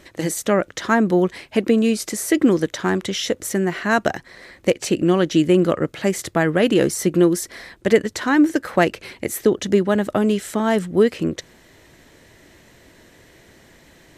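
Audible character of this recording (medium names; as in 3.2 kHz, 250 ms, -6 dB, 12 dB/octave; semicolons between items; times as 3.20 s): noise floor -51 dBFS; spectral tilt -5.0 dB/octave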